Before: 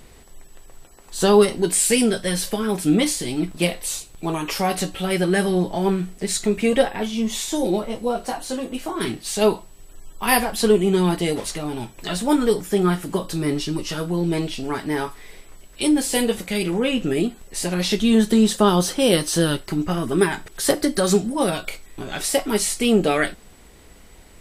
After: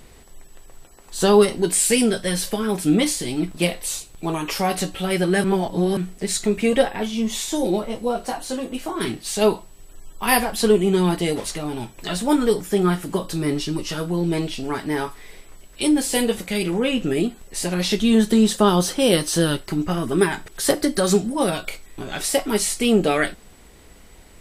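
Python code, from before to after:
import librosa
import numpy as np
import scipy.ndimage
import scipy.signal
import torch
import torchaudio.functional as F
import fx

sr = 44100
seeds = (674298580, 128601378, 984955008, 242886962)

y = fx.edit(x, sr, fx.reverse_span(start_s=5.44, length_s=0.53), tone=tone)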